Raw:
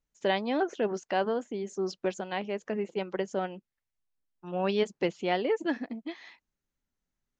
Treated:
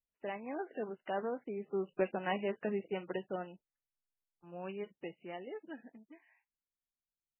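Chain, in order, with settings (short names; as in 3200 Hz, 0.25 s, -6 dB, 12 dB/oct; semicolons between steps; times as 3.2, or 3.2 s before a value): Doppler pass-by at 2.26, 10 m/s, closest 5.4 m; gain -1 dB; MP3 8 kbps 12000 Hz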